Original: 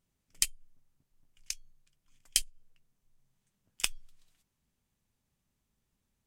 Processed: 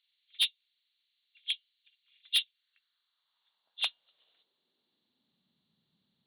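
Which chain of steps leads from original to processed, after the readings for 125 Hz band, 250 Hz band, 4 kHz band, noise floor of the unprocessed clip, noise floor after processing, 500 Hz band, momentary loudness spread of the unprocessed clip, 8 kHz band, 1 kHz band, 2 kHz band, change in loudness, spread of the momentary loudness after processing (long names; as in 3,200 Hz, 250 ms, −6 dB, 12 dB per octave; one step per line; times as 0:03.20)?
below −15 dB, below −10 dB, +7.5 dB, −82 dBFS, −82 dBFS, can't be measured, 10 LU, −13.5 dB, +0.5 dB, +2.5 dB, +1.5 dB, 14 LU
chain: hearing-aid frequency compression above 2,700 Hz 4 to 1
high-pass filter sweep 2,300 Hz → 170 Hz, 0:02.37–0:05.68
soft clipping −21 dBFS, distortion −7 dB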